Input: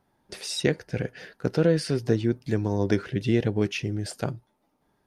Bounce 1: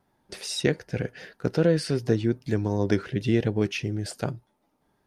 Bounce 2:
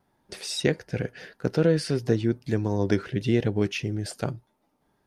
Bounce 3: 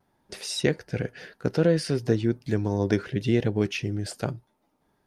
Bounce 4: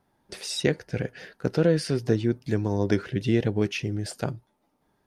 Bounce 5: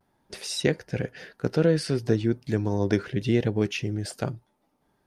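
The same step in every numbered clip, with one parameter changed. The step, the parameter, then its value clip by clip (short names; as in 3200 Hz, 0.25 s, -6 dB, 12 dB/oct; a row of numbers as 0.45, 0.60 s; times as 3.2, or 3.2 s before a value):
vibrato, rate: 2.6, 1.6, 0.7, 5, 0.36 Hz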